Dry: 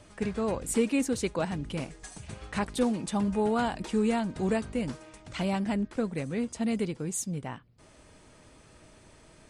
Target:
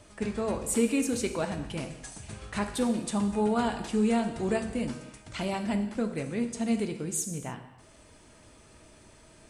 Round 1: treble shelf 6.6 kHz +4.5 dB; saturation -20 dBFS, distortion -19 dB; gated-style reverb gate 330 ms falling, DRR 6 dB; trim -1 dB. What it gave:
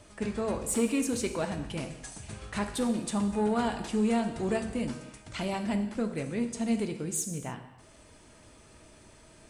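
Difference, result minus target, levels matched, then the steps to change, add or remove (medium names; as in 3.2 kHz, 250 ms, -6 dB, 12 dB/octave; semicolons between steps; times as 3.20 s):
saturation: distortion +15 dB
change: saturation -11 dBFS, distortion -34 dB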